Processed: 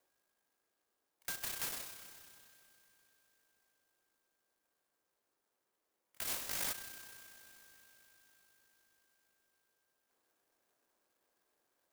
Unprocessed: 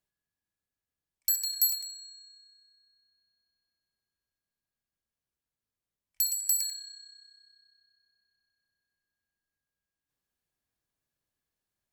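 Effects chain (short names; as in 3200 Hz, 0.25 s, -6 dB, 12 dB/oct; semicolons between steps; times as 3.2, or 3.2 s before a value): mistuned SSB -54 Hz 380–3000 Hz; 6.25–6.73 flutter echo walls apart 3.4 m, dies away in 0.87 s; clock jitter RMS 0.12 ms; gain +14.5 dB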